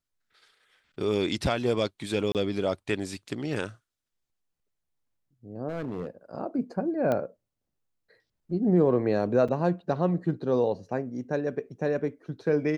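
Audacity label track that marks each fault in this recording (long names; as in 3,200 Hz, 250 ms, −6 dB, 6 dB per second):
2.320000	2.350000	drop-out 28 ms
5.680000	6.070000	clipping −28.5 dBFS
7.120000	7.120000	click −16 dBFS
9.480000	9.490000	drop-out 5.1 ms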